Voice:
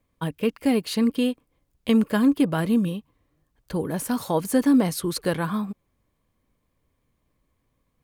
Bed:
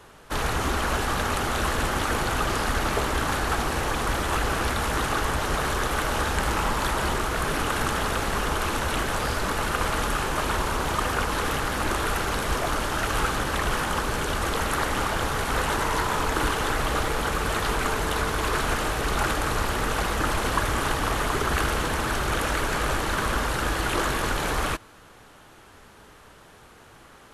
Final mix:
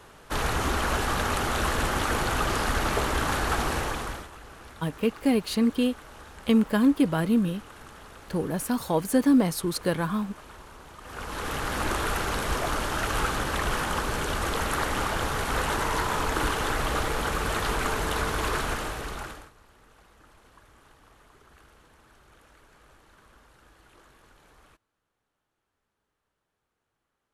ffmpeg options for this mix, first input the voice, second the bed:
ffmpeg -i stem1.wav -i stem2.wav -filter_complex "[0:a]adelay=4600,volume=-1.5dB[link_01];[1:a]volume=18dB,afade=type=out:start_time=3.72:duration=0.58:silence=0.1,afade=type=in:start_time=11.02:duration=0.75:silence=0.112202,afade=type=out:start_time=18.46:duration=1.05:silence=0.0334965[link_02];[link_01][link_02]amix=inputs=2:normalize=0" out.wav

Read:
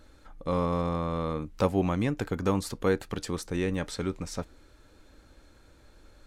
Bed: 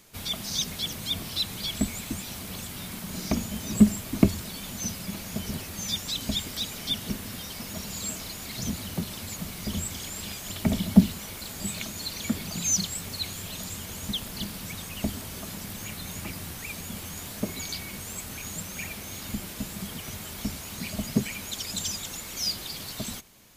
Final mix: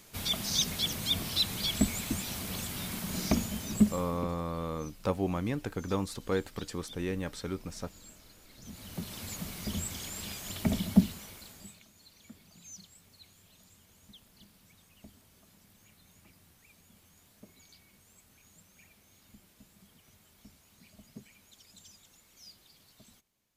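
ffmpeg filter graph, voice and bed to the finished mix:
ffmpeg -i stem1.wav -i stem2.wav -filter_complex "[0:a]adelay=3450,volume=-5dB[link_01];[1:a]volume=16.5dB,afade=type=out:start_time=3.25:duration=0.99:silence=0.0944061,afade=type=in:start_time=8.62:duration=0.64:silence=0.149624,afade=type=out:start_time=10.77:duration=1.03:silence=0.1[link_02];[link_01][link_02]amix=inputs=2:normalize=0" out.wav

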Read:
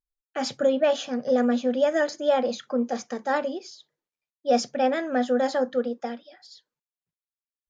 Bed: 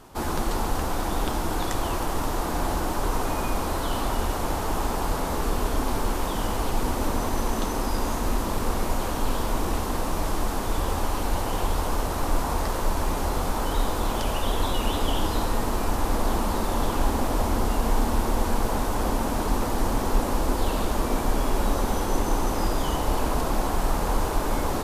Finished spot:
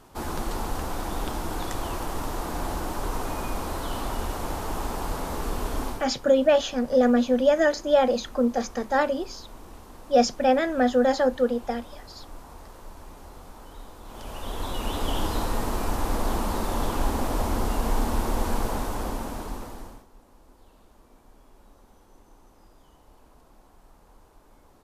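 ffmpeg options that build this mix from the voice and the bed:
ffmpeg -i stem1.wav -i stem2.wav -filter_complex "[0:a]adelay=5650,volume=2.5dB[link_01];[1:a]volume=13dB,afade=type=out:start_time=5.85:duration=0.21:silence=0.177828,afade=type=in:start_time=14.04:duration=1.15:silence=0.141254,afade=type=out:start_time=18.57:duration=1.49:silence=0.0354813[link_02];[link_01][link_02]amix=inputs=2:normalize=0" out.wav

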